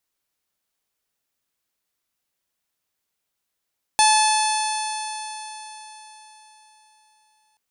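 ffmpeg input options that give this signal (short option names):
-f lavfi -i "aevalsrc='0.2*pow(10,-3*t/4.16)*sin(2*PI*862.56*t)+0.0501*pow(10,-3*t/4.16)*sin(2*PI*1728.48*t)+0.0631*pow(10,-3*t/4.16)*sin(2*PI*2601.08*t)+0.0562*pow(10,-3*t/4.16)*sin(2*PI*3483.67*t)+0.0708*pow(10,-3*t/4.16)*sin(2*PI*4379.48*t)+0.0447*pow(10,-3*t/4.16)*sin(2*PI*5291.64*t)+0.0501*pow(10,-3*t/4.16)*sin(2*PI*6223.22*t)+0.0266*pow(10,-3*t/4.16)*sin(2*PI*7177.14*t)+0.0282*pow(10,-3*t/4.16)*sin(2*PI*8156.24*t)+0.0891*pow(10,-3*t/4.16)*sin(2*PI*9163.19*t)+0.0224*pow(10,-3*t/4.16)*sin(2*PI*10200.53*t)':d=3.58:s=44100"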